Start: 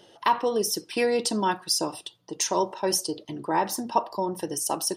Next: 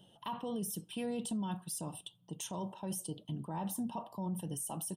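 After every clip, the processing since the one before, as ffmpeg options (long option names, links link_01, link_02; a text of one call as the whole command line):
ffmpeg -i in.wav -af "firequalizer=gain_entry='entry(110,0);entry(170,7);entry(340,-14);entry(730,-9);entry(2100,-21);entry(3100,-3);entry(4700,-23);entry(8600,-4)':delay=0.05:min_phase=1,alimiter=level_in=5dB:limit=-24dB:level=0:latency=1:release=16,volume=-5dB,volume=-1.5dB" out.wav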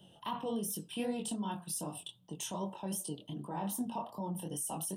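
ffmpeg -i in.wav -filter_complex "[0:a]flanger=delay=19.5:depth=6.3:speed=2.6,acrossover=split=200|930[link_01][link_02][link_03];[link_01]acompressor=threshold=-54dB:ratio=6[link_04];[link_04][link_02][link_03]amix=inputs=3:normalize=0,volume=5.5dB" out.wav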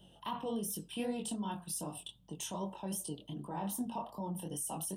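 ffmpeg -i in.wav -af "aeval=exprs='val(0)+0.000398*(sin(2*PI*50*n/s)+sin(2*PI*2*50*n/s)/2+sin(2*PI*3*50*n/s)/3+sin(2*PI*4*50*n/s)/4+sin(2*PI*5*50*n/s)/5)':channel_layout=same,volume=-1dB" out.wav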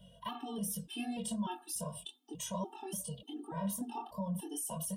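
ffmpeg -i in.wav -af "afftfilt=real='re*gt(sin(2*PI*1.7*pts/sr)*(1-2*mod(floor(b*sr/1024/230),2)),0)':imag='im*gt(sin(2*PI*1.7*pts/sr)*(1-2*mod(floor(b*sr/1024/230),2)),0)':win_size=1024:overlap=0.75,volume=3.5dB" out.wav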